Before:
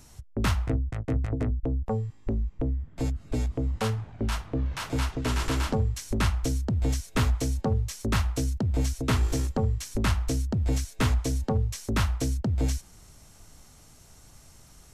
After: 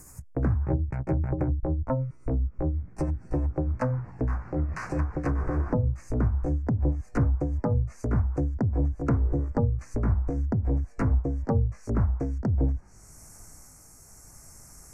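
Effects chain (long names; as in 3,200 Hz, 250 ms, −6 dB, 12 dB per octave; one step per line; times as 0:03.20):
pitch glide at a constant tempo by +3.5 semitones ending unshifted
high-shelf EQ 2,900 Hz +7.5 dB
treble cut that deepens with the level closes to 600 Hz, closed at −22 dBFS
Butterworth band-reject 3,400 Hz, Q 0.91
level +2 dB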